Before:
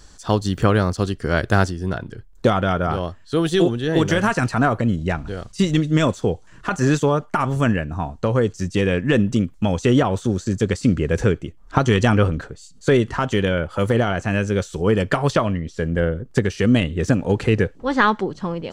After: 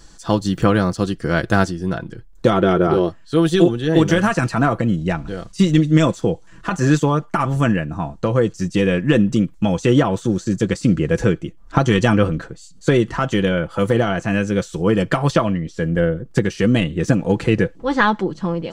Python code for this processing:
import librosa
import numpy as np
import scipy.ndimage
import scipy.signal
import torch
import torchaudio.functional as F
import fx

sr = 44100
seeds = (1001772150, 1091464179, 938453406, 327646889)

y = fx.small_body(x, sr, hz=(380.0, 3900.0), ring_ms=40, db=fx.line((2.51, 14.0), (3.08, 17.0)), at=(2.51, 3.08), fade=0.02)
y = fx.peak_eq(y, sr, hz=250.0, db=3.5, octaves=0.77)
y = y + 0.47 * np.pad(y, (int(6.0 * sr / 1000.0), 0))[:len(y)]